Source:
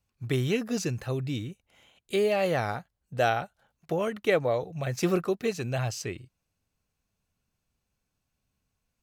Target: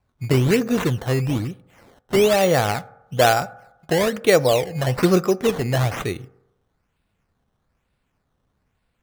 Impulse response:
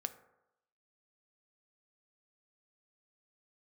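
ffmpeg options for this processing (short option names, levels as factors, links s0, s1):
-filter_complex "[0:a]acrusher=samples=13:mix=1:aa=0.000001:lfo=1:lforange=13:lforate=1.1,asplit=2[s0][s1];[1:a]atrim=start_sample=2205,highshelf=f=5900:g=-10[s2];[s1][s2]afir=irnorm=-1:irlink=0,volume=0.841[s3];[s0][s3]amix=inputs=2:normalize=0,volume=1.68"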